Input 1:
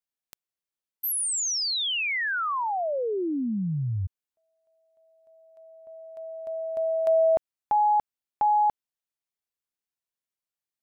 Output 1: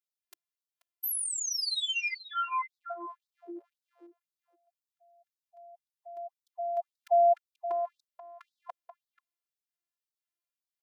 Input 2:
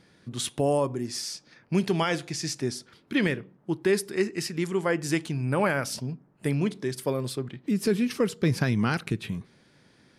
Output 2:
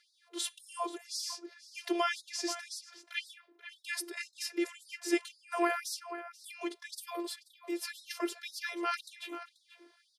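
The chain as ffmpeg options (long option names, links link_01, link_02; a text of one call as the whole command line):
ffmpeg -i in.wav -filter_complex "[0:a]equalizer=frequency=7800:width=1.5:gain=-2.5,asplit=2[link_01][link_02];[link_02]adelay=484,volume=-11dB,highshelf=frequency=4000:gain=-10.9[link_03];[link_01][link_03]amix=inputs=2:normalize=0,afftfilt=real='hypot(re,im)*cos(PI*b)':imag='0':win_size=512:overlap=0.75,acrossover=split=250|3900[link_04][link_05][link_06];[link_04]asoftclip=type=tanh:threshold=-38dB[link_07];[link_07][link_05][link_06]amix=inputs=3:normalize=0,afftfilt=real='re*gte(b*sr/1024,280*pow(3600/280,0.5+0.5*sin(2*PI*1.9*pts/sr)))':imag='im*gte(b*sr/1024,280*pow(3600/280,0.5+0.5*sin(2*PI*1.9*pts/sr)))':win_size=1024:overlap=0.75" out.wav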